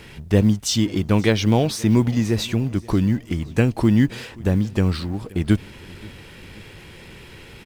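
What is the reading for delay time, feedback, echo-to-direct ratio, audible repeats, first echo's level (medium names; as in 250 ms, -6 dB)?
529 ms, 54%, -21.5 dB, 3, -23.0 dB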